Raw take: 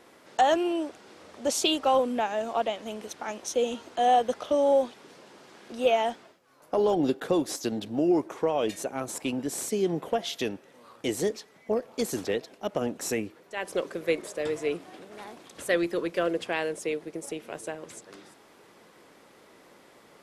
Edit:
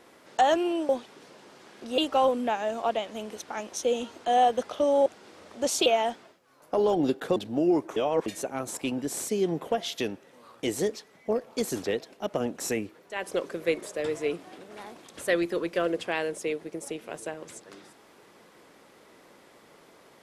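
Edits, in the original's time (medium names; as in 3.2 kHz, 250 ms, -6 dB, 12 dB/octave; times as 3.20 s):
0.89–1.69 s: swap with 4.77–5.86 s
7.36–7.77 s: delete
8.37–8.67 s: reverse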